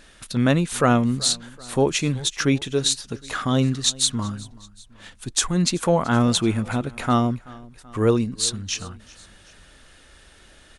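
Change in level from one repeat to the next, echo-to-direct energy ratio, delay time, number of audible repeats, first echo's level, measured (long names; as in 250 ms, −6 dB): −5.0 dB, −21.0 dB, 381 ms, 2, −22.0 dB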